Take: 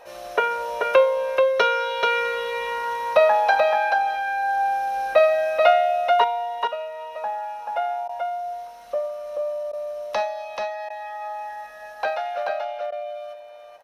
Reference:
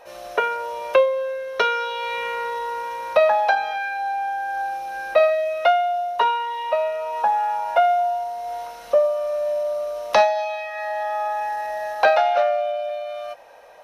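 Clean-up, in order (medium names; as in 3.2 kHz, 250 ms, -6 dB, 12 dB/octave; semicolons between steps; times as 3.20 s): de-click; interpolate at 8.08/9.72/10.89/12.91 s, 10 ms; inverse comb 433 ms -4 dB; gain correction +9 dB, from 6.24 s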